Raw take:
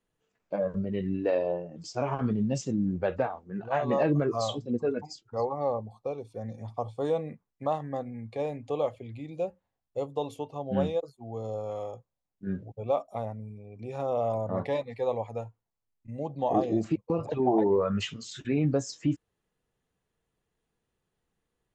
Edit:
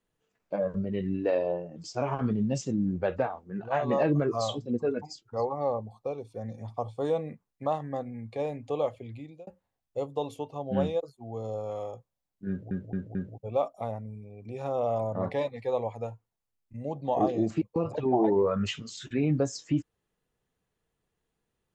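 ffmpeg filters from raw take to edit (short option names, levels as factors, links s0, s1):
-filter_complex "[0:a]asplit=5[s0][s1][s2][s3][s4];[s0]atrim=end=9.47,asetpts=PTS-STARTPTS,afade=t=out:st=9.13:d=0.34[s5];[s1]atrim=start=9.47:end=12.712,asetpts=PTS-STARTPTS,afade=t=in:d=0.004:c=hsin[s6];[s2]atrim=start=12.488:end=12.712[s7];[s3]atrim=start=12.488:end=12.712[s8];[s4]atrim=start=12.488[s9];[s5][s6]concat=n=2:v=0:a=1[s10];[s10][s7]acrossfade=d=0.004:c1=hsin:c2=hsin[s11];[s11][s8]acrossfade=d=0.004:c1=hsin:c2=hsin[s12];[s12][s9]acrossfade=d=0.004:c1=hsin:c2=hsin"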